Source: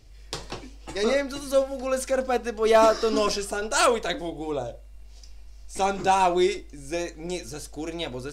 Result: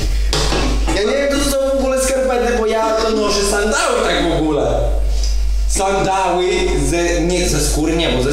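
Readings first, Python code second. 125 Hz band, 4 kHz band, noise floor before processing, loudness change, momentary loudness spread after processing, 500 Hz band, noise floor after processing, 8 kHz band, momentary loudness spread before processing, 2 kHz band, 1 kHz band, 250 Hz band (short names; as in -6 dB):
+20.0 dB, +12.0 dB, -46 dBFS, +9.0 dB, 3 LU, +8.5 dB, -16 dBFS, +13.0 dB, 16 LU, +10.0 dB, +6.5 dB, +12.5 dB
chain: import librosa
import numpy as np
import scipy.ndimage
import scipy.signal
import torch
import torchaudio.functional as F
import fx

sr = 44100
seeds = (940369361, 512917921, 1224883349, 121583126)

y = fx.rev_double_slope(x, sr, seeds[0], early_s=0.64, late_s=1.6, knee_db=-18, drr_db=-1.0)
y = fx.env_flatten(y, sr, amount_pct=100)
y = y * 10.0 ** (-3.0 / 20.0)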